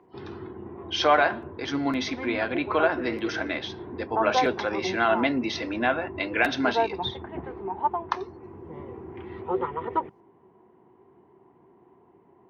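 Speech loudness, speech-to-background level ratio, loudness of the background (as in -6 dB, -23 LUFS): -26.5 LUFS, 6.5 dB, -33.0 LUFS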